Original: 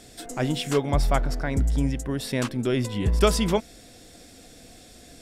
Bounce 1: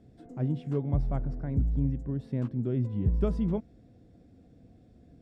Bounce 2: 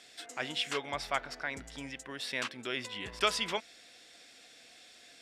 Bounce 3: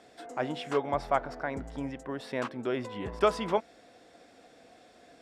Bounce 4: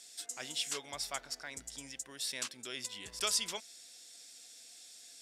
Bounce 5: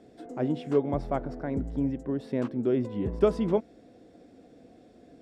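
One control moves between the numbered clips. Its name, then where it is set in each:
resonant band-pass, frequency: 120, 2,500, 910, 6,600, 350 Hertz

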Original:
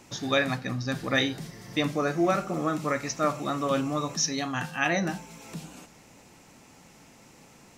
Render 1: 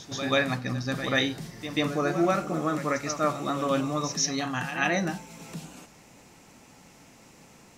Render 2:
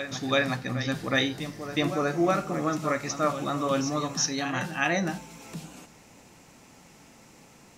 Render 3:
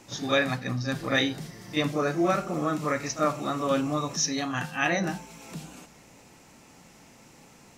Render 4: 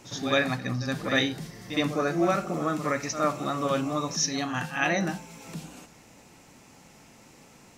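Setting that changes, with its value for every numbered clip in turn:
backwards echo, delay time: 137, 367, 33, 65 milliseconds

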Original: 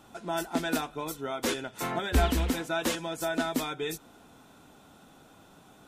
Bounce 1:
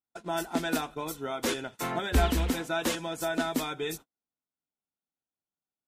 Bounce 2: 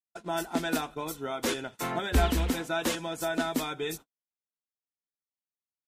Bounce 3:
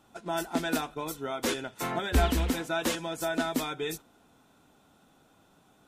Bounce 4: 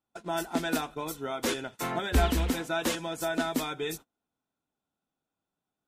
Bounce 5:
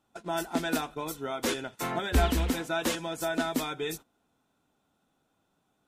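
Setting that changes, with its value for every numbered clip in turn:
noise gate, range: −46, −58, −7, −33, −19 decibels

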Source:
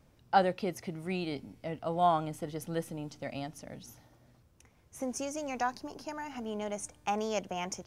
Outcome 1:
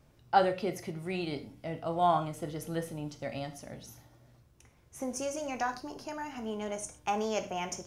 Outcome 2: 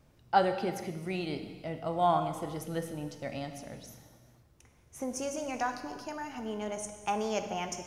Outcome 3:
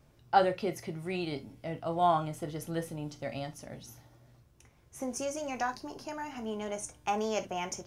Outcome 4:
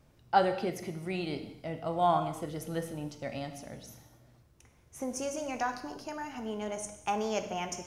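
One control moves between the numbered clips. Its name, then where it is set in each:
reverb whose tail is shaped and stops, gate: 150, 500, 90, 320 milliseconds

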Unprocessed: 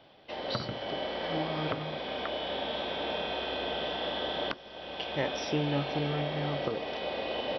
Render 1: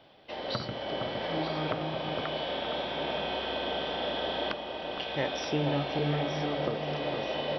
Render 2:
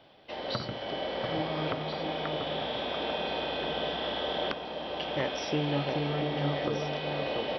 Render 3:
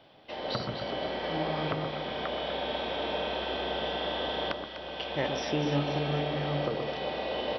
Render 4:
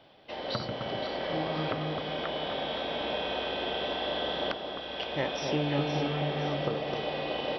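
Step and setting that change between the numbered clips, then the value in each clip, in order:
delay that swaps between a low-pass and a high-pass, delay time: 463, 688, 124, 259 milliseconds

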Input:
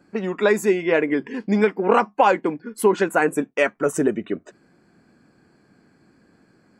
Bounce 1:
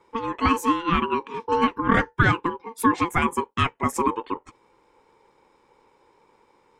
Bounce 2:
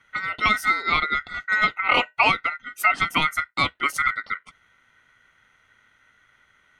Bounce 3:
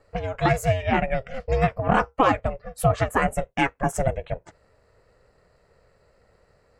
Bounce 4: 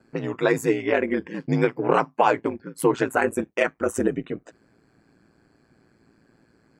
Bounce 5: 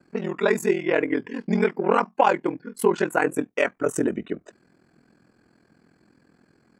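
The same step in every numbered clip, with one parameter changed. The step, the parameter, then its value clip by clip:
ring modulation, frequency: 680, 1,700, 270, 57, 21 Hertz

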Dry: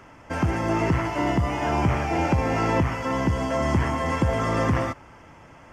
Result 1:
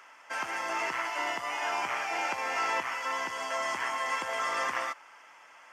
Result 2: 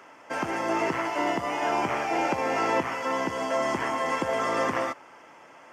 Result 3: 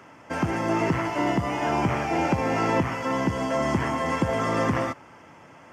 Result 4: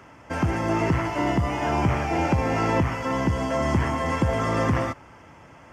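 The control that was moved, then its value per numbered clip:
high-pass filter, corner frequency: 1,100, 380, 140, 53 Hertz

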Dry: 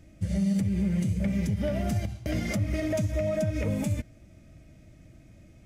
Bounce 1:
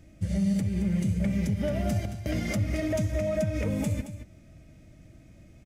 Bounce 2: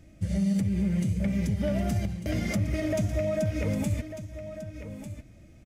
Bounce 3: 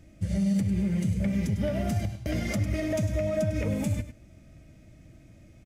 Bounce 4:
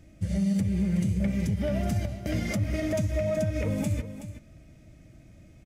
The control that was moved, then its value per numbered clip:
single-tap delay, delay time: 222, 1,197, 101, 374 milliseconds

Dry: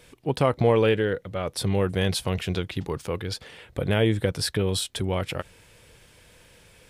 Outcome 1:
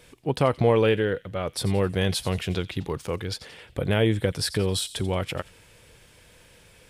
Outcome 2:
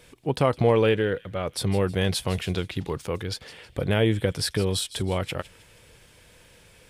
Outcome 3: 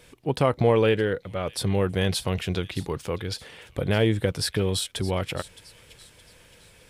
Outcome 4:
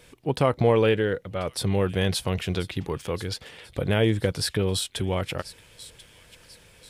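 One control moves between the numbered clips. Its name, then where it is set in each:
delay with a high-pass on its return, delay time: 88, 158, 617, 1,038 milliseconds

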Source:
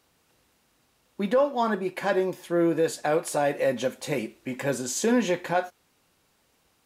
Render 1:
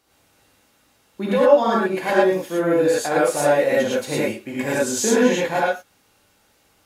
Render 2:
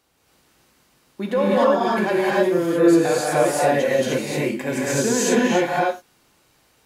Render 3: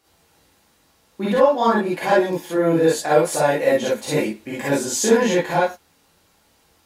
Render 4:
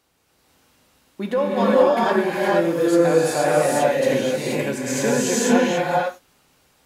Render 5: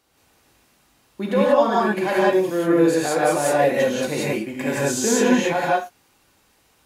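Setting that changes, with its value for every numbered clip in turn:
reverb whose tail is shaped and stops, gate: 140, 330, 80, 510, 210 milliseconds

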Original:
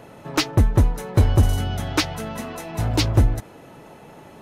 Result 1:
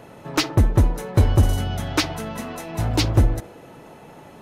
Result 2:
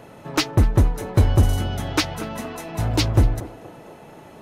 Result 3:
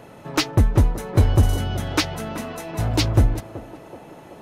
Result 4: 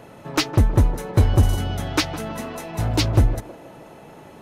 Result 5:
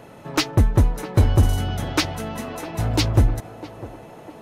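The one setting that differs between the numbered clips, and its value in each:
feedback echo with a band-pass in the loop, delay time: 61, 236, 379, 159, 653 milliseconds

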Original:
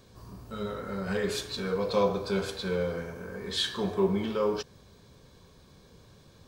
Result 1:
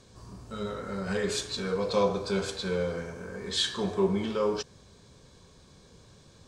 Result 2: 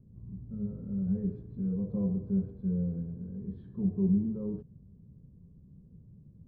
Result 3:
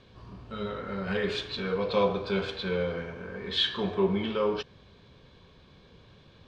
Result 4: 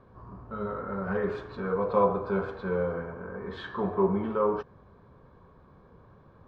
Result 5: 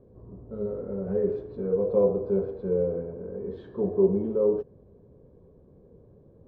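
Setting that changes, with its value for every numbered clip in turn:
low-pass with resonance, frequency: 7,900, 180, 3,100, 1,200, 470 Hertz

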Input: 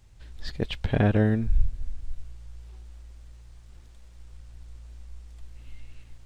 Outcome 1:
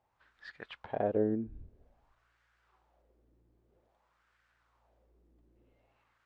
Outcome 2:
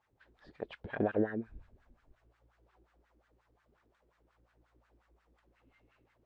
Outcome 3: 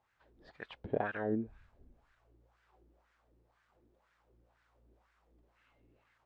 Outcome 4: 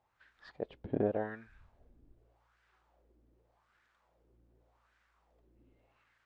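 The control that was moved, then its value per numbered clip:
LFO wah, speed: 0.51, 5.6, 2, 0.85 Hertz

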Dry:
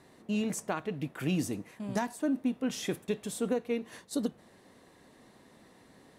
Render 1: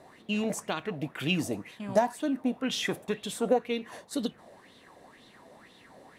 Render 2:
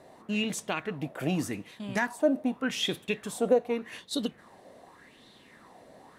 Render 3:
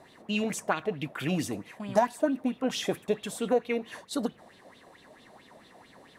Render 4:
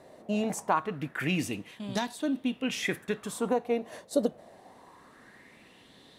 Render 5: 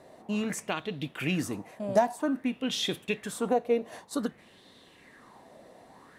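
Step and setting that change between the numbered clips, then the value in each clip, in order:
auto-filter bell, speed: 2, 0.85, 4.5, 0.24, 0.53 Hertz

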